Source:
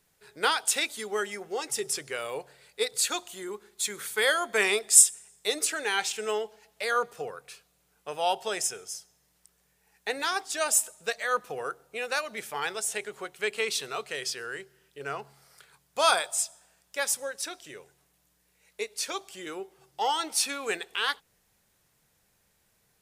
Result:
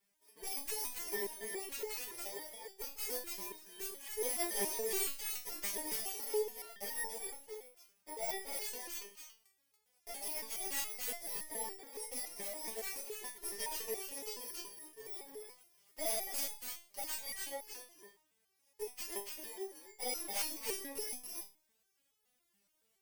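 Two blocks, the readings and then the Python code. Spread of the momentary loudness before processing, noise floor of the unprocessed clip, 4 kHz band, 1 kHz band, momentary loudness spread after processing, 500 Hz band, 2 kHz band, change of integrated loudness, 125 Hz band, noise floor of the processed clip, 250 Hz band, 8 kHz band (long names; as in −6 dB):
15 LU, −70 dBFS, −13.5 dB, −17.0 dB, 13 LU, −11.0 dB, −17.0 dB, −11.5 dB, below −10 dB, −79 dBFS, −9.0 dB, −13.0 dB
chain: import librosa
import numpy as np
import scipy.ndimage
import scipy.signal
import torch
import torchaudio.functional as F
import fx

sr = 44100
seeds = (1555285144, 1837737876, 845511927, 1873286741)

p1 = fx.bit_reversed(x, sr, seeds[0], block=32)
p2 = fx.low_shelf(p1, sr, hz=150.0, db=-10.0)
p3 = fx.tube_stage(p2, sr, drive_db=25.0, bias=0.5)
p4 = p3 + fx.echo_multitap(p3, sr, ms=(43, 282), db=(-12.0, -3.5), dry=0)
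p5 = fx.resonator_held(p4, sr, hz=7.1, low_hz=200.0, high_hz=430.0)
y = p5 * 10.0 ** (6.5 / 20.0)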